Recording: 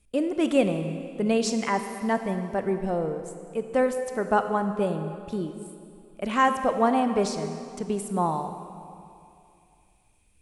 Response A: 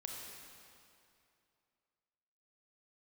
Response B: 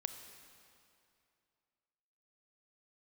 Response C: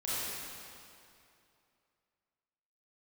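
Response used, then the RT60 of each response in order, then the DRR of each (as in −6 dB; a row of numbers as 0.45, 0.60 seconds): B; 2.6, 2.6, 2.6 seconds; −1.0, 7.5, −11.0 decibels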